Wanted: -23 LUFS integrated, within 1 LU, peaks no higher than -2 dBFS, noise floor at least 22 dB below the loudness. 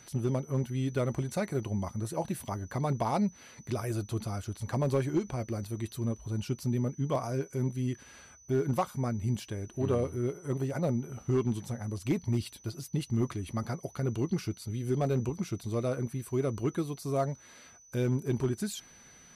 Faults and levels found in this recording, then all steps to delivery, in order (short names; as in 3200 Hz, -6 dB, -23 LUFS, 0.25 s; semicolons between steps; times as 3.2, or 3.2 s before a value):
clipped 0.3%; flat tops at -20.5 dBFS; steady tone 6000 Hz; tone level -55 dBFS; loudness -33.0 LUFS; peak -20.5 dBFS; loudness target -23.0 LUFS
-> clip repair -20.5 dBFS; notch 6000 Hz, Q 30; gain +10 dB